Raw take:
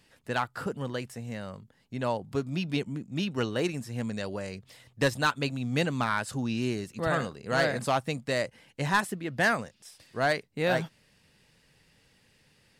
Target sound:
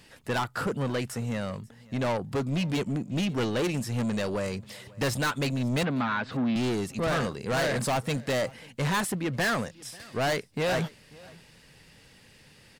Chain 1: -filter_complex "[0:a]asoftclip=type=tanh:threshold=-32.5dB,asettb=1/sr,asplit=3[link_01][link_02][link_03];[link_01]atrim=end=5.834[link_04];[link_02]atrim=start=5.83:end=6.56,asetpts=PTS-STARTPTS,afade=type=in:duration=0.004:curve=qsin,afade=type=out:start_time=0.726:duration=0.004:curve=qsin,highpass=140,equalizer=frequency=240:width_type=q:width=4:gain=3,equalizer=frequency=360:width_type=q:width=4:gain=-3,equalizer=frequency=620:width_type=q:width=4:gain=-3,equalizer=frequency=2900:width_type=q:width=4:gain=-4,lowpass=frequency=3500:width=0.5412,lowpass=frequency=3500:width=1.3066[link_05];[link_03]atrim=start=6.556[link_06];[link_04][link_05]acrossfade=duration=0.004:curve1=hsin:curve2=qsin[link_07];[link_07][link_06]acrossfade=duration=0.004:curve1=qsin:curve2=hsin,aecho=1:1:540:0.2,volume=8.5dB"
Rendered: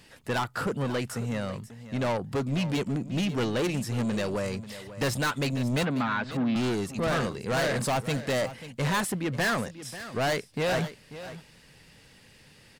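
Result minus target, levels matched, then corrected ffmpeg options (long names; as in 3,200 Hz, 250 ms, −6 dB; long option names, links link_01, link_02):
echo-to-direct +9 dB
-filter_complex "[0:a]asoftclip=type=tanh:threshold=-32.5dB,asettb=1/sr,asplit=3[link_01][link_02][link_03];[link_01]atrim=end=5.834[link_04];[link_02]atrim=start=5.83:end=6.56,asetpts=PTS-STARTPTS,afade=type=in:duration=0.004:curve=qsin,afade=type=out:start_time=0.726:duration=0.004:curve=qsin,highpass=140,equalizer=frequency=240:width_type=q:width=4:gain=3,equalizer=frequency=360:width_type=q:width=4:gain=-3,equalizer=frequency=620:width_type=q:width=4:gain=-3,equalizer=frequency=2900:width_type=q:width=4:gain=-4,lowpass=frequency=3500:width=0.5412,lowpass=frequency=3500:width=1.3066[link_05];[link_03]atrim=start=6.556[link_06];[link_04][link_05]acrossfade=duration=0.004:curve1=hsin:curve2=qsin[link_07];[link_07][link_06]acrossfade=duration=0.004:curve1=qsin:curve2=hsin,aecho=1:1:540:0.0708,volume=8.5dB"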